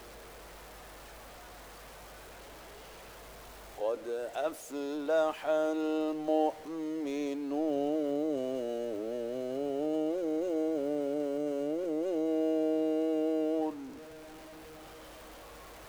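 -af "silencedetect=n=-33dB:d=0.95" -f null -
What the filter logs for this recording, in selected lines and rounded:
silence_start: 0.00
silence_end: 3.80 | silence_duration: 3.80
silence_start: 13.70
silence_end: 15.89 | silence_duration: 2.18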